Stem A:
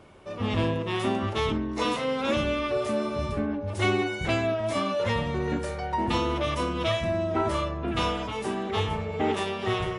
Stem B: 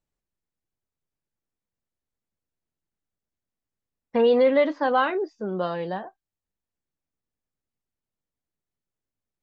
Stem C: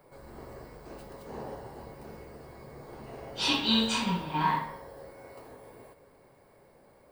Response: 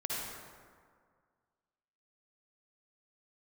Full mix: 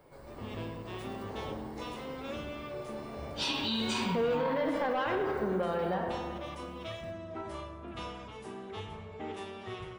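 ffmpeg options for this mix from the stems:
-filter_complex "[0:a]volume=0.15,asplit=2[s0][s1];[s1]volume=0.299[s2];[1:a]asoftclip=type=tanh:threshold=0.119,lowpass=3900,volume=0.531,asplit=2[s3][s4];[s4]volume=0.668[s5];[2:a]equalizer=f=15000:t=o:w=0.63:g=-7.5,volume=0.75,asplit=2[s6][s7];[s7]volume=0.15[s8];[3:a]atrim=start_sample=2205[s9];[s2][s5][s8]amix=inputs=3:normalize=0[s10];[s10][s9]afir=irnorm=-1:irlink=0[s11];[s0][s3][s6][s11]amix=inputs=4:normalize=0,alimiter=limit=0.0708:level=0:latency=1:release=61"

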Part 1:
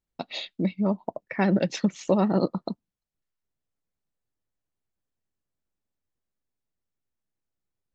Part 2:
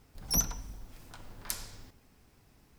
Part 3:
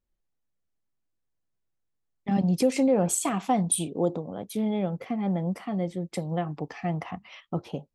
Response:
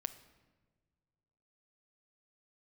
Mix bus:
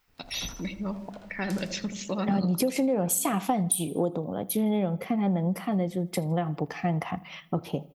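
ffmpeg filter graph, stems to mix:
-filter_complex "[0:a]volume=1.12,asplit=3[s0][s1][s2];[s1]volume=0.422[s3];[s2]volume=0.0794[s4];[1:a]aemphasis=mode=reproduction:type=50fm,volume=1.06,asplit=2[s5][s6];[s6]volume=0.422[s7];[2:a]aexciter=amount=2.7:drive=9.7:freq=11000,volume=1.26,asplit=3[s8][s9][s10];[s9]volume=0.299[s11];[s10]volume=0.0891[s12];[s0][s5]amix=inputs=2:normalize=0,highpass=1400,alimiter=level_in=1.26:limit=0.0631:level=0:latency=1:release=95,volume=0.794,volume=1[s13];[3:a]atrim=start_sample=2205[s14];[s3][s11]amix=inputs=2:normalize=0[s15];[s15][s14]afir=irnorm=-1:irlink=0[s16];[s4][s7][s12]amix=inputs=3:normalize=0,aecho=0:1:80|160|240|320|400:1|0.38|0.144|0.0549|0.0209[s17];[s8][s13][s16][s17]amix=inputs=4:normalize=0,acompressor=threshold=0.0794:ratio=6"

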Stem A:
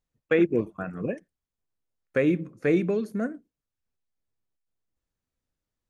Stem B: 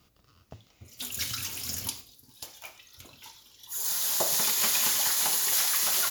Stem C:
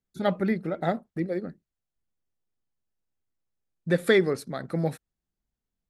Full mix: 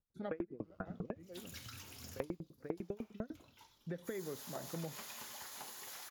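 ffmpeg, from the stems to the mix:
-filter_complex "[0:a]lowpass=2100,aeval=exprs='val(0)*pow(10,-38*if(lt(mod(10*n/s,1),2*abs(10)/1000),1-mod(10*n/s,1)/(2*abs(10)/1000),(mod(10*n/s,1)-2*abs(10)/1000)/(1-2*abs(10)/1000))/20)':c=same,volume=1.19,asplit=2[s0][s1];[1:a]acompressor=threshold=0.0282:ratio=3,adelay=350,volume=0.398[s2];[2:a]acompressor=threshold=0.0794:ratio=6,volume=0.237[s3];[s1]apad=whole_len=259990[s4];[s3][s4]sidechaincompress=threshold=0.00794:ratio=16:attack=7.7:release=498[s5];[s0][s2][s5]amix=inputs=3:normalize=0,highshelf=f=2500:g=-11.5,acompressor=threshold=0.0126:ratio=6"

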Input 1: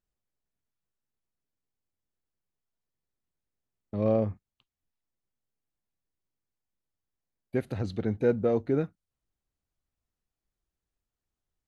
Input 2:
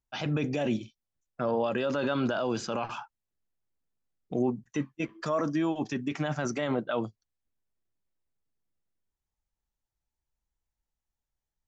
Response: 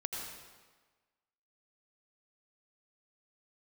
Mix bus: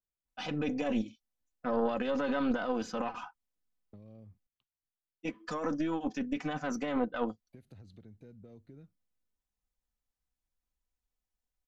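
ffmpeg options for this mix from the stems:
-filter_complex "[0:a]acrossover=split=240|3000[s0][s1][s2];[s1]acompressor=threshold=0.00447:ratio=2[s3];[s0][s3][s2]amix=inputs=3:normalize=0,alimiter=level_in=1.19:limit=0.0631:level=0:latency=1:release=186,volume=0.841,acompressor=threshold=0.0141:ratio=5,volume=0.237[s4];[1:a]aecho=1:1:4:0.77,aeval=exprs='0.178*(cos(1*acos(clip(val(0)/0.178,-1,1)))-cos(1*PI/2))+0.0501*(cos(2*acos(clip(val(0)/0.178,-1,1)))-cos(2*PI/2))':c=same,adynamicequalizer=threshold=0.00708:dfrequency=2300:dqfactor=0.7:tfrequency=2300:tqfactor=0.7:attack=5:release=100:ratio=0.375:range=2.5:mode=cutabove:tftype=highshelf,adelay=250,volume=0.531,asplit=3[s5][s6][s7];[s5]atrim=end=4.47,asetpts=PTS-STARTPTS,afade=t=out:st=4.466:d=0.004:c=hsin[s8];[s6]atrim=start=4.47:end=5.23,asetpts=PTS-STARTPTS,volume=0[s9];[s7]atrim=start=5.23,asetpts=PTS-STARTPTS,afade=t=in:d=0.004:c=hsin[s10];[s8][s9][s10]concat=n=3:v=0:a=1[s11];[s4][s11]amix=inputs=2:normalize=0"

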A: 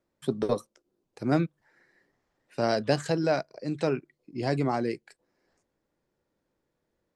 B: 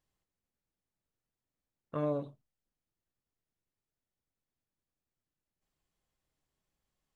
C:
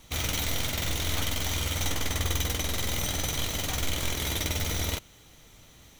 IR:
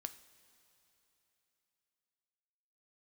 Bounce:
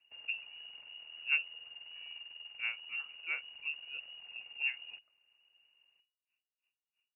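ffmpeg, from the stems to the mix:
-filter_complex "[0:a]aeval=exprs='val(0)*pow(10,-35*(0.5-0.5*cos(2*PI*3*n/s))/20)':c=same,volume=1.06[s0];[1:a]volume=0.133[s1];[2:a]acompressor=threshold=0.0251:ratio=3,tremolo=f=160:d=0.75,volume=0.282[s2];[s0][s1][s2]amix=inputs=3:normalize=0,firequalizer=gain_entry='entry(130,0);entry(240,-8);entry(580,-12)':delay=0.05:min_phase=1,lowpass=f=2500:t=q:w=0.5098,lowpass=f=2500:t=q:w=0.6013,lowpass=f=2500:t=q:w=0.9,lowpass=f=2500:t=q:w=2.563,afreqshift=-2900"

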